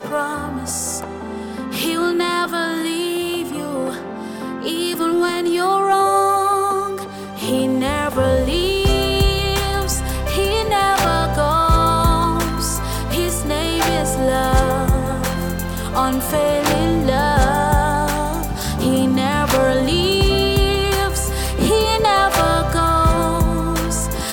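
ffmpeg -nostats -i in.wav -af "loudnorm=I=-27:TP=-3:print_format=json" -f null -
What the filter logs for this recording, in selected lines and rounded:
"input_i" : "-18.0",
"input_tp" : "-3.4",
"input_lra" : "4.8",
"input_thresh" : "-28.1",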